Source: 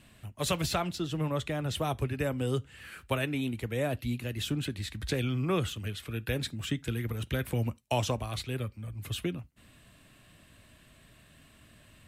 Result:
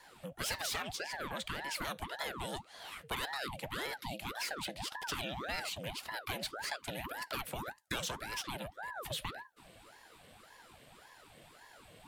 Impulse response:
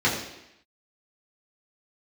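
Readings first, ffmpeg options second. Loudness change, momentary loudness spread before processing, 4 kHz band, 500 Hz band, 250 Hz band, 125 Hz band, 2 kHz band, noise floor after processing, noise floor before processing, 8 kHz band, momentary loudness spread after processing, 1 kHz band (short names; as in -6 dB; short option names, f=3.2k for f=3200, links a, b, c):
-6.5 dB, 7 LU, -2.0 dB, -10.5 dB, -14.0 dB, -17.5 dB, 0.0 dB, -60 dBFS, -59 dBFS, -1.5 dB, 19 LU, -2.5 dB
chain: -filter_complex "[0:a]acrossover=split=1300[a][b];[a]acompressor=threshold=-40dB:ratio=5[c];[b]volume=33.5dB,asoftclip=hard,volume=-33.5dB[d];[c][d]amix=inputs=2:normalize=0,afreqshift=240,aeval=exprs='val(0)*sin(2*PI*760*n/s+760*0.8/1.8*sin(2*PI*1.8*n/s))':c=same,volume=2.5dB"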